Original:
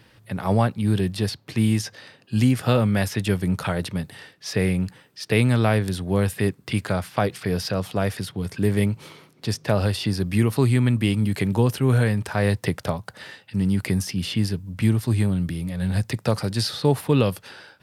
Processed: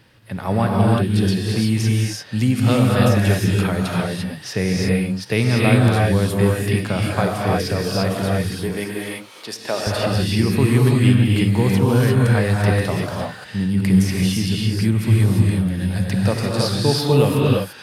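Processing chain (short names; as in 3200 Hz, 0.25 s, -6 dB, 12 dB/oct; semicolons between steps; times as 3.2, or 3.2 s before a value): 8.55–9.87 HPF 400 Hz 12 dB/oct; non-linear reverb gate 0.37 s rising, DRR -3 dB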